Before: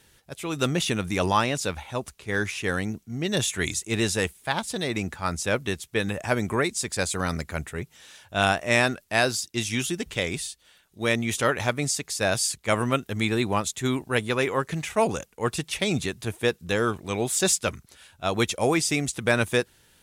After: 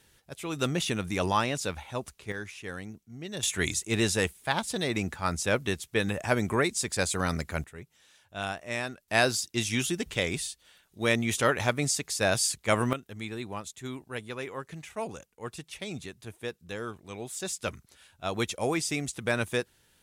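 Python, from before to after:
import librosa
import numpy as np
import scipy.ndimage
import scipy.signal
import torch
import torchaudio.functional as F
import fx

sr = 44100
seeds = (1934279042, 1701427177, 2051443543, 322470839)

y = fx.gain(x, sr, db=fx.steps((0.0, -4.0), (2.32, -12.0), (3.43, -1.5), (7.64, -12.0), (9.08, -1.5), (12.93, -12.5), (17.59, -6.0)))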